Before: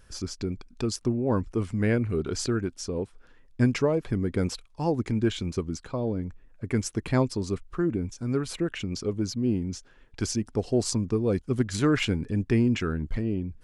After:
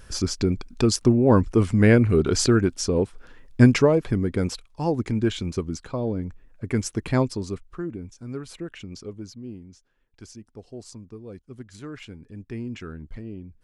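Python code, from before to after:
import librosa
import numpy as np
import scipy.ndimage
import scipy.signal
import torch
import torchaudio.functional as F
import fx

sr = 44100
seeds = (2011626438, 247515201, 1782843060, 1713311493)

y = fx.gain(x, sr, db=fx.line((3.61, 8.5), (4.39, 2.0), (7.22, 2.0), (7.94, -6.5), (8.99, -6.5), (9.74, -15.0), (12.12, -15.0), (12.84, -8.5)))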